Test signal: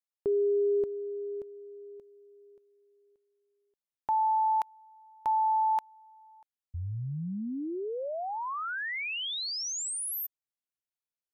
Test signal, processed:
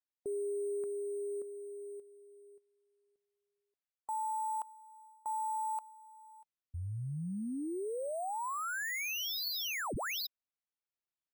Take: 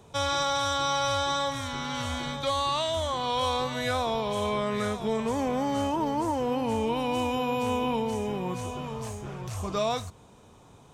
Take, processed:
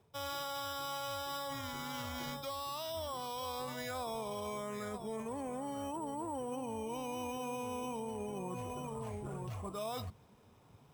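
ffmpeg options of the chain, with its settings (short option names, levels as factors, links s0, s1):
-af "afftdn=nr=12:nf=-40,lowshelf=f=150:g=-5,areverse,acompressor=threshold=0.0141:ratio=6:attack=0.37:release=234:knee=6:detection=rms,areverse,acrusher=samples=5:mix=1:aa=0.000001,volume=1.26"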